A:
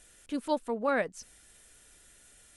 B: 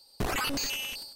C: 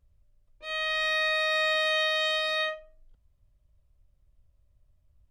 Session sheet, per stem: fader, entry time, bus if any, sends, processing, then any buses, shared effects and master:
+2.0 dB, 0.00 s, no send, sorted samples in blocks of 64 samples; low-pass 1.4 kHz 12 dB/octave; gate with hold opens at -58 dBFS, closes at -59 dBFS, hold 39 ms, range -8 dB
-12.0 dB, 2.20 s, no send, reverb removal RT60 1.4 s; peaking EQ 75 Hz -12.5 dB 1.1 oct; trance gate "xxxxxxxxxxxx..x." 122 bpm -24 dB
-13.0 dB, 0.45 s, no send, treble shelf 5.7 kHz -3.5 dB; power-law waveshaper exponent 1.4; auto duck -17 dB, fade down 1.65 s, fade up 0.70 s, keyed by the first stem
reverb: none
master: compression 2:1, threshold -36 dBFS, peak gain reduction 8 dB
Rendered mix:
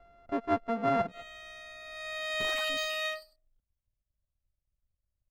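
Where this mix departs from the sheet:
stem C -13.0 dB -> -2.5 dB; master: missing compression 2:1, threshold -36 dBFS, peak gain reduction 8 dB

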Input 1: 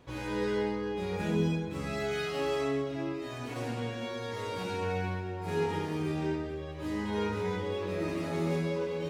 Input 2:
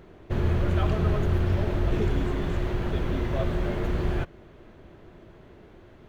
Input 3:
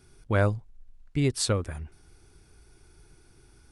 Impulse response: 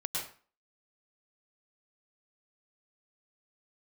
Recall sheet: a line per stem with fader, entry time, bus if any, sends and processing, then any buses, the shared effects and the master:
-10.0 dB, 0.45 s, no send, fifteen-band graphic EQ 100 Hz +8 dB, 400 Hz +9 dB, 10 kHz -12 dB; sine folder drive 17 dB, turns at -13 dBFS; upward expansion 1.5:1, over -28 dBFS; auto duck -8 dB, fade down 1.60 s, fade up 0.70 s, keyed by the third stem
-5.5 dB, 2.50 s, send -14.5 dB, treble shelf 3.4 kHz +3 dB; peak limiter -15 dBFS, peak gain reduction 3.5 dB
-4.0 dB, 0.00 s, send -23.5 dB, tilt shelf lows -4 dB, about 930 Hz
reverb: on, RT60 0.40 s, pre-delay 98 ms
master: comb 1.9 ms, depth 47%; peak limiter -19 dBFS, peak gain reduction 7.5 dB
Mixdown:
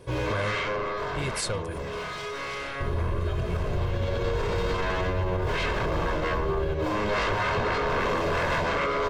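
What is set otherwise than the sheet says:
stem 1: entry 0.45 s -> 0.00 s; stem 2: missing treble shelf 3.4 kHz +3 dB; stem 3: send off

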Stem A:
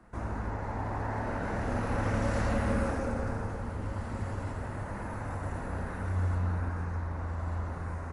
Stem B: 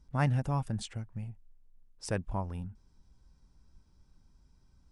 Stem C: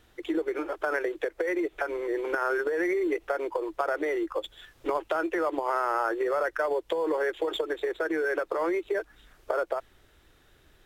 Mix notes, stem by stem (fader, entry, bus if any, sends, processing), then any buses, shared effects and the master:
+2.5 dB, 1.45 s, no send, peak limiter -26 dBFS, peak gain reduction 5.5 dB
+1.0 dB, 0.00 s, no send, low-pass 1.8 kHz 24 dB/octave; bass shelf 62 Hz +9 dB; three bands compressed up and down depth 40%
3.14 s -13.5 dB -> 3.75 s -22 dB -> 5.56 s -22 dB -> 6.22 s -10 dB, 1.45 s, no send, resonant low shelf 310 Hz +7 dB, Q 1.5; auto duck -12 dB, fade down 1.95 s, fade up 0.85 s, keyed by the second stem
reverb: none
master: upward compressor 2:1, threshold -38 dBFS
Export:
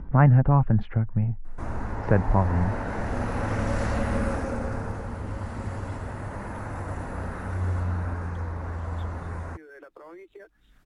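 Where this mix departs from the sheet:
stem A: missing peak limiter -26 dBFS, peak gain reduction 5.5 dB; stem B +1.0 dB -> +12.0 dB; stem C -13.5 dB -> -24.0 dB

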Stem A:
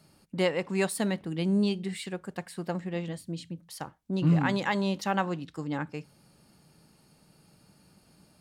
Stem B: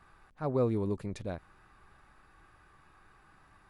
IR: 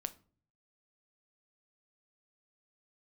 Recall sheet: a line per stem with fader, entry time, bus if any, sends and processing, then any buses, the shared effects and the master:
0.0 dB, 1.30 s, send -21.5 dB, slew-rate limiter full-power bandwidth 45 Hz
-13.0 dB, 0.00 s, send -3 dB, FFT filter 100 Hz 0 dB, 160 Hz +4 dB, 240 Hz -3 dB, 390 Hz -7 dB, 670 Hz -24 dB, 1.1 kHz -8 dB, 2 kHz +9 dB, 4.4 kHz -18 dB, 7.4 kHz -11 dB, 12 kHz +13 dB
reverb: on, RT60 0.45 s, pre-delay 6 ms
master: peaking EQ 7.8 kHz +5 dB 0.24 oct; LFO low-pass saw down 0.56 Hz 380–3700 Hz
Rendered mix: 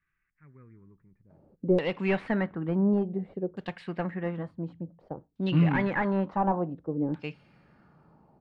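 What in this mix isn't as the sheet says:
stem B -13.0 dB -> -25.0 dB; master: missing peaking EQ 7.8 kHz +5 dB 0.24 oct

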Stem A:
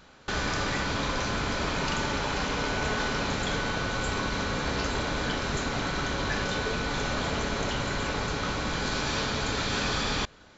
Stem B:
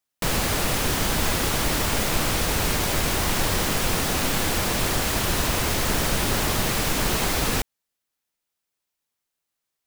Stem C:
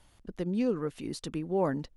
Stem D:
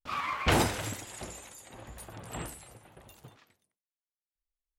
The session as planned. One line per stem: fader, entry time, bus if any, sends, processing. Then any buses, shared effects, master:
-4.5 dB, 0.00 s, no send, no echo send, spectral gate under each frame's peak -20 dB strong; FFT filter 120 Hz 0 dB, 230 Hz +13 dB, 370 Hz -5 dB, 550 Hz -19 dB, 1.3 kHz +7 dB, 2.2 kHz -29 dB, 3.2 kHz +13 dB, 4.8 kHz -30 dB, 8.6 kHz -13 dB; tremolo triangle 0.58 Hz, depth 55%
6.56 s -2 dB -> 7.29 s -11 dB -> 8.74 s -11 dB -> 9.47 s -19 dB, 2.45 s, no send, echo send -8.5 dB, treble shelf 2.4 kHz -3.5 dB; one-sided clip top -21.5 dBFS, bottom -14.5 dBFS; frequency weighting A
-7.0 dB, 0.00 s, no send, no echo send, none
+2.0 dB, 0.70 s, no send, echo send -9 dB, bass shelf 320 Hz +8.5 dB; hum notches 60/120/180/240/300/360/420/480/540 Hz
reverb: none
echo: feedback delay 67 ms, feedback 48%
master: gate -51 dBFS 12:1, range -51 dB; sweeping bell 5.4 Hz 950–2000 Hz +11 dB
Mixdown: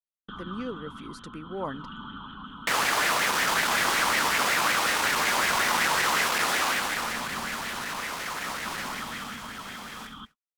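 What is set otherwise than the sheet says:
stem A -4.5 dB -> -16.0 dB; stem B: missing treble shelf 2.4 kHz -3.5 dB; stem D: muted

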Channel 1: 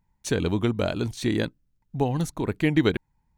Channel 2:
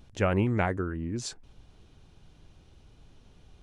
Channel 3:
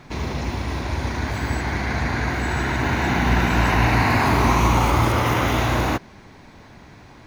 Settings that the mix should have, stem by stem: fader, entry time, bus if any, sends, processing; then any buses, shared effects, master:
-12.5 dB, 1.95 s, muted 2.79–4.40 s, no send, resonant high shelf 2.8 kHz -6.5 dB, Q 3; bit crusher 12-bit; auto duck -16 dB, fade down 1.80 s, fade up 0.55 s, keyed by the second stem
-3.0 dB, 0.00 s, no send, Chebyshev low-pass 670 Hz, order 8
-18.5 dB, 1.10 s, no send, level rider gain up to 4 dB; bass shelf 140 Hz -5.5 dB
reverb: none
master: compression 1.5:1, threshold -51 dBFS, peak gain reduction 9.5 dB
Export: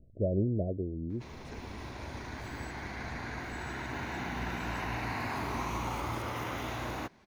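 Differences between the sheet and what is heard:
stem 1: entry 1.95 s -> 1.20 s; master: missing compression 1.5:1, threshold -51 dBFS, peak gain reduction 9.5 dB

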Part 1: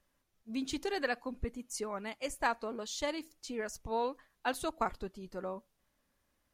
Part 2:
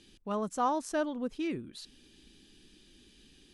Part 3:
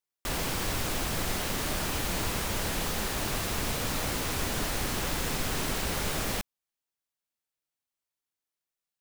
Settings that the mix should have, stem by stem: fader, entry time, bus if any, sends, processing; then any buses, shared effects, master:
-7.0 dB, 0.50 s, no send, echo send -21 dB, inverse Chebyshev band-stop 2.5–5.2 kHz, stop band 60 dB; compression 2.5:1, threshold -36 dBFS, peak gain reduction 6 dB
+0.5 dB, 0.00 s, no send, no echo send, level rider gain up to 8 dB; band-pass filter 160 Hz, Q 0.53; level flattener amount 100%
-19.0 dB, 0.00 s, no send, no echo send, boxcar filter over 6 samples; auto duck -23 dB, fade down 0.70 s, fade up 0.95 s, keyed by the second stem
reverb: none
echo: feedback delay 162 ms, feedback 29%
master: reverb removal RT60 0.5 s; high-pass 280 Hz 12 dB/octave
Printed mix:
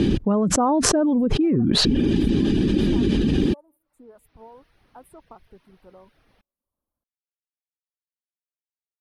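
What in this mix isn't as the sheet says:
stem 2 +0.5 dB -> +7.0 dB; stem 3 -19.0 dB -> -28.0 dB; master: missing high-pass 280 Hz 12 dB/octave

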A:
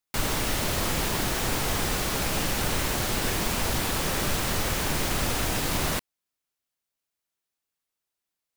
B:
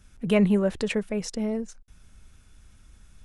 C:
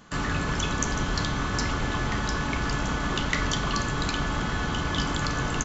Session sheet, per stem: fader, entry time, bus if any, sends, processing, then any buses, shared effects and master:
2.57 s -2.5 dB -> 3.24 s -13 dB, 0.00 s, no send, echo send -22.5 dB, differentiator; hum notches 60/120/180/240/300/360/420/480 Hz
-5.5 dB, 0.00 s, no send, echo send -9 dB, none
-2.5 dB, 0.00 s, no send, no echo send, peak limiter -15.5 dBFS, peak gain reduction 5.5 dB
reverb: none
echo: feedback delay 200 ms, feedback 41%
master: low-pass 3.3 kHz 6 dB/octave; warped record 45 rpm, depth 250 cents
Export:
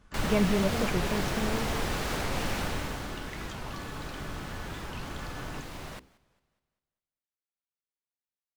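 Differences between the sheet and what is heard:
stem A: missing differentiator; stem C -2.5 dB -> -13.0 dB

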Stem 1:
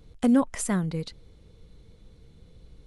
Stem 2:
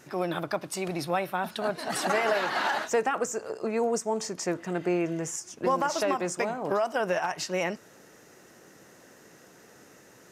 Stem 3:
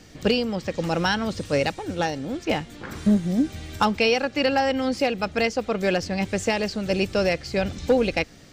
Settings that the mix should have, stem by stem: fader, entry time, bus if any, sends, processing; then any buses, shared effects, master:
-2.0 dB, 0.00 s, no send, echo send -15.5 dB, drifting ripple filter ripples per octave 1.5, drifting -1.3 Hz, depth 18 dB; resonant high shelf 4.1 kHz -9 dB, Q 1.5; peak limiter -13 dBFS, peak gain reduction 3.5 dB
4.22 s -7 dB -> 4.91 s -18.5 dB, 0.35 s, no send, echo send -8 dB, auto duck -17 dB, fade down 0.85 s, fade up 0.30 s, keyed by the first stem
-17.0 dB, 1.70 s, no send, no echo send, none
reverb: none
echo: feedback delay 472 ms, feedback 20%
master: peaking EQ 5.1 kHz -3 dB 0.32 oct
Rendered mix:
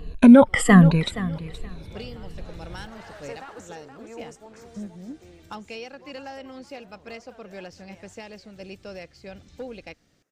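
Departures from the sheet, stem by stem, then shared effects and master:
stem 1 -2.0 dB -> +10.0 dB; stem 2 -7.0 dB -> -14.5 dB; master: missing peaking EQ 5.1 kHz -3 dB 0.32 oct

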